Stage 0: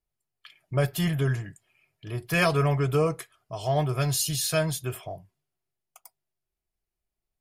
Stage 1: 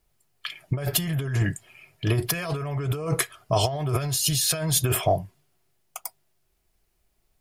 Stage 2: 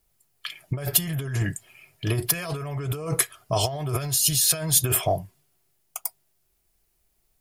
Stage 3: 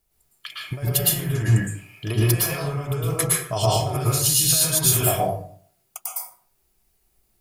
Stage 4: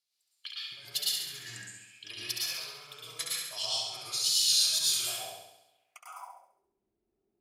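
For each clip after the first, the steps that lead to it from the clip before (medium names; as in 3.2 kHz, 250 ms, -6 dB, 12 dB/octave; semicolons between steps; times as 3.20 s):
compressor with a negative ratio -34 dBFS, ratio -1; trim +8.5 dB
treble shelf 6.5 kHz +9 dB; trim -2 dB
plate-style reverb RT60 0.54 s, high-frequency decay 0.6×, pre-delay 100 ms, DRR -5 dB; trim -2.5 dB
wow and flutter 48 cents; flutter echo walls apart 11.6 m, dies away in 0.87 s; band-pass sweep 4.3 kHz -> 320 Hz, 5.66–6.70 s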